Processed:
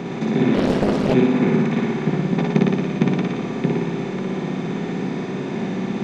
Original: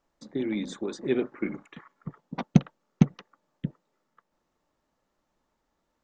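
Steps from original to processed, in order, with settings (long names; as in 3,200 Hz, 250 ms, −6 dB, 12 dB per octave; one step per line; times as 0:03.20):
compressor on every frequency bin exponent 0.2
three-way crossover with the lows and the highs turned down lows −15 dB, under 160 Hz, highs −13 dB, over 4,700 Hz
flutter between parallel walls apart 10 metres, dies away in 1.3 s
0:00.54–0:01.14: highs frequency-modulated by the lows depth 0.93 ms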